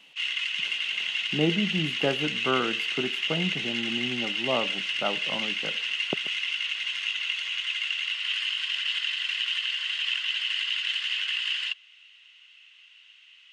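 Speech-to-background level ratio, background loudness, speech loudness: -4.5 dB, -27.0 LUFS, -31.5 LUFS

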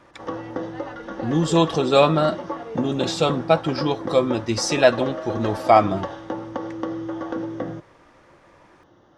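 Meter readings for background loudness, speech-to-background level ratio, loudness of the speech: -31.0 LUFS, 10.5 dB, -20.5 LUFS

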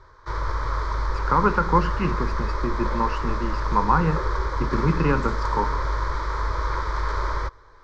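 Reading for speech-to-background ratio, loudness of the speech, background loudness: 3.0 dB, -25.0 LUFS, -28.0 LUFS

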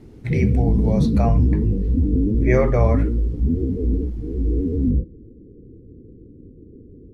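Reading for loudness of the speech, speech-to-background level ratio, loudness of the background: -24.0 LUFS, -3.0 dB, -21.0 LUFS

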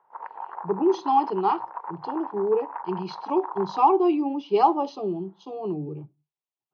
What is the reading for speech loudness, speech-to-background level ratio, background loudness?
-25.0 LUFS, 12.0 dB, -37.0 LUFS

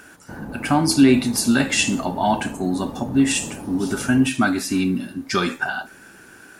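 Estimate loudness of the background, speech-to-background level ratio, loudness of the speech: -35.0 LUFS, 14.5 dB, -20.5 LUFS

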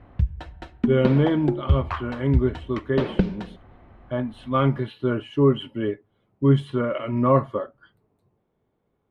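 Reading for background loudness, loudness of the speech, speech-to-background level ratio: -28.0 LUFS, -23.5 LUFS, 4.5 dB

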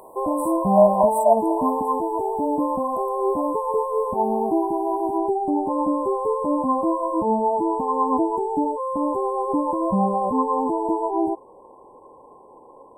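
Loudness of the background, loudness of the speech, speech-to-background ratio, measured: -23.0 LUFS, -21.0 LUFS, 2.0 dB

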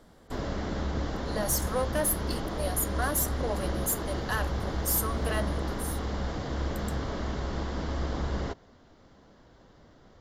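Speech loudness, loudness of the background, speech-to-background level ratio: -31.5 LUFS, -33.5 LUFS, 2.0 dB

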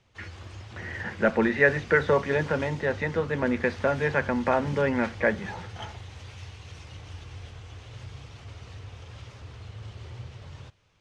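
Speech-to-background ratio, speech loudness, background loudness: 17.5 dB, -25.5 LUFS, -43.0 LUFS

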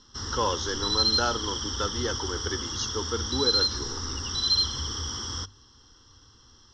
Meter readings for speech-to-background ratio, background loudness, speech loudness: -5.0 dB, -27.0 LUFS, -32.0 LUFS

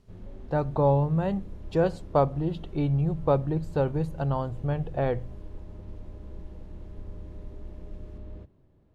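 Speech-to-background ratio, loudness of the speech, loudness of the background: 17.5 dB, -27.5 LUFS, -45.0 LUFS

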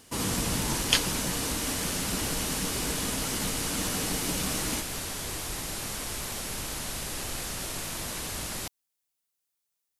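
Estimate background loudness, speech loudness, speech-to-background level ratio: -33.5 LUFS, -29.5 LUFS, 4.0 dB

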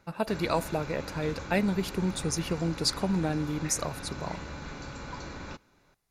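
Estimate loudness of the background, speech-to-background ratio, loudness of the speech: -41.0 LUFS, 10.5 dB, -30.5 LUFS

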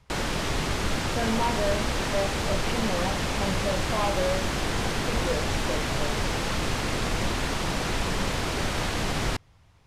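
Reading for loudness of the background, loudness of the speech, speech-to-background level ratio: -28.0 LUFS, -32.5 LUFS, -4.5 dB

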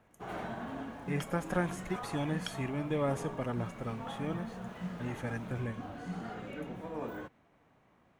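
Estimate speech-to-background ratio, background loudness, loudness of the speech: 5.5 dB, -42.5 LUFS, -37.0 LUFS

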